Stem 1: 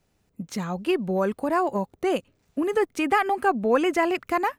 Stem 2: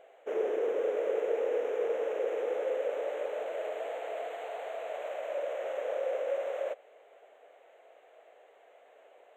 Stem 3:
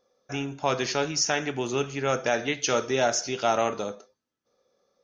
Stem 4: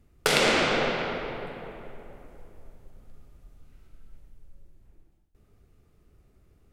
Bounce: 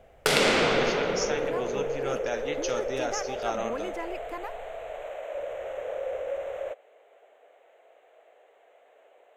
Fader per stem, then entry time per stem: -14.5, 0.0, -8.0, -0.5 dB; 0.00, 0.00, 0.00, 0.00 s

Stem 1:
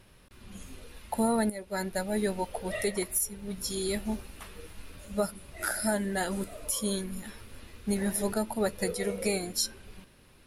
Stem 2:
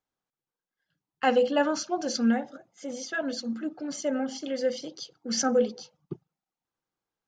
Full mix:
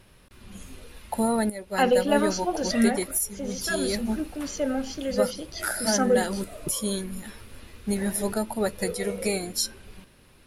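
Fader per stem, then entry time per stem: +2.5, +1.5 dB; 0.00, 0.55 s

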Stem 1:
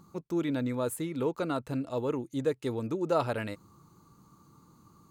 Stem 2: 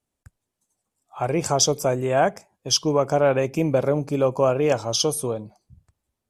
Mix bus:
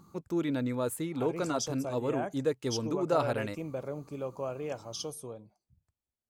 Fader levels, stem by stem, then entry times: -0.5, -16.5 dB; 0.00, 0.00 s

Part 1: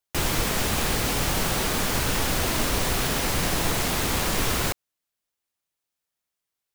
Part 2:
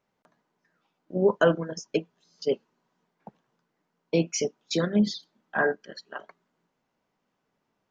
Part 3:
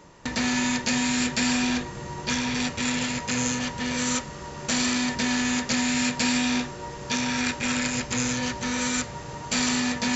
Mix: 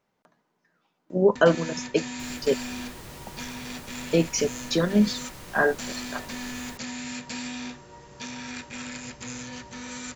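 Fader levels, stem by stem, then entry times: -19.5, +2.5, -11.0 dB; 2.05, 0.00, 1.10 s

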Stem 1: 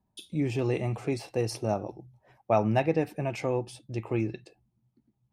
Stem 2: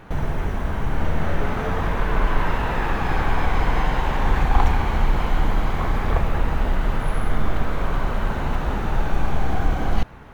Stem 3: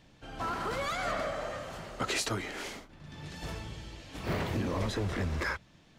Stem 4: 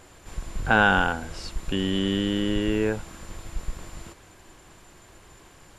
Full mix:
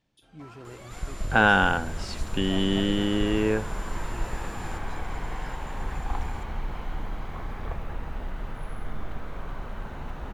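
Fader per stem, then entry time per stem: -16.5, -13.0, -16.0, 0.0 dB; 0.00, 1.55, 0.00, 0.65 s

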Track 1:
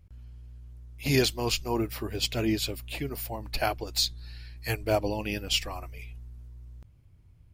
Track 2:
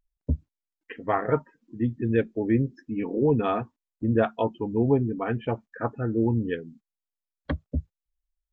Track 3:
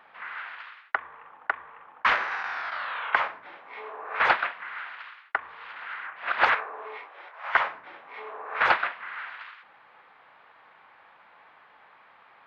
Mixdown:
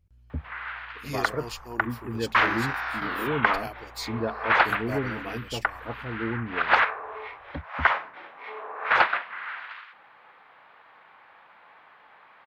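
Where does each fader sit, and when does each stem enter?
-10.0, -7.5, +1.5 dB; 0.00, 0.05, 0.30 s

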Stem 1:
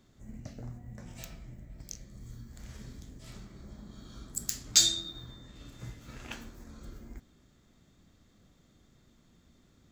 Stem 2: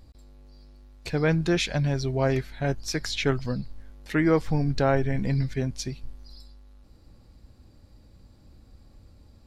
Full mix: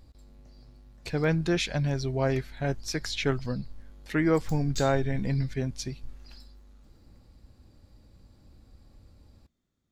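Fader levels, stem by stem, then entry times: -17.0, -2.5 dB; 0.00, 0.00 s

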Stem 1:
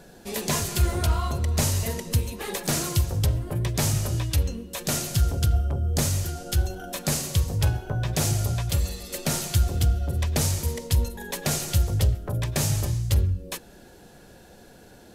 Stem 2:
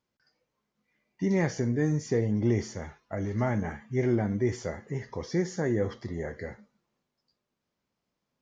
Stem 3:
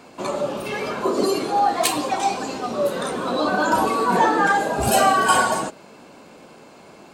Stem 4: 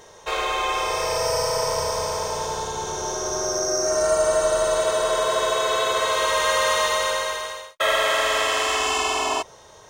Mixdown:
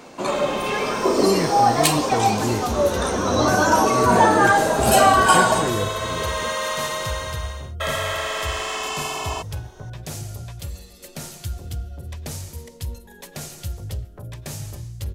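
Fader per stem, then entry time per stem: -8.5, +1.0, +2.0, -5.0 dB; 1.90, 0.00, 0.00, 0.00 s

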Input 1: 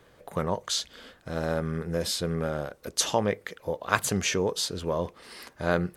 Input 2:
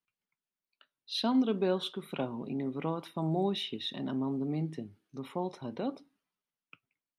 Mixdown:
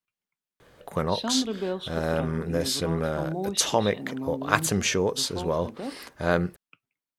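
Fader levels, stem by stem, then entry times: +2.0, -0.5 dB; 0.60, 0.00 s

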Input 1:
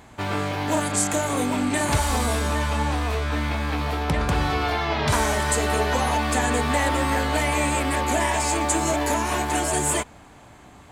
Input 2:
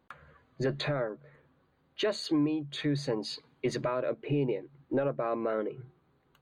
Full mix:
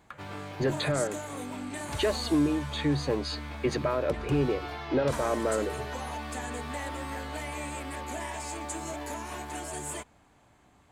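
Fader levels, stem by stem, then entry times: -14.0, +2.5 dB; 0.00, 0.00 s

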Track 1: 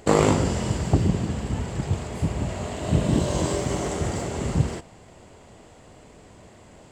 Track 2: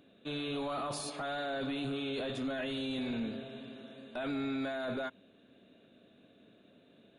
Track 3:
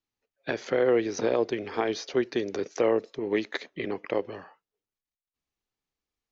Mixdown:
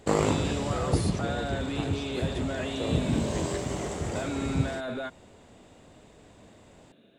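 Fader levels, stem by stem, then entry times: -6.0, +2.5, -12.0 dB; 0.00, 0.00, 0.00 s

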